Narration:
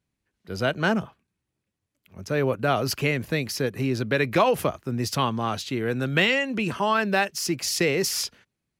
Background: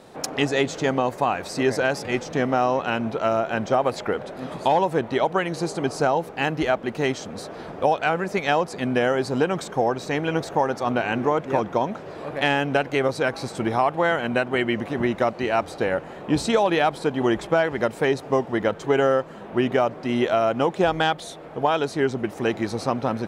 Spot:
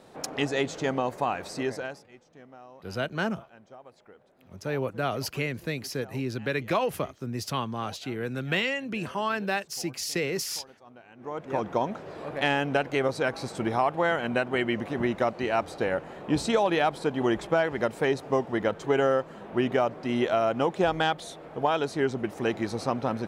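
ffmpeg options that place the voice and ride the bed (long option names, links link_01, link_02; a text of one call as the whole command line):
ffmpeg -i stem1.wav -i stem2.wav -filter_complex "[0:a]adelay=2350,volume=-6dB[link_01];[1:a]volume=18.5dB,afade=type=out:start_time=1.46:duration=0.61:silence=0.0749894,afade=type=in:start_time=11.17:duration=0.54:silence=0.0630957[link_02];[link_01][link_02]amix=inputs=2:normalize=0" out.wav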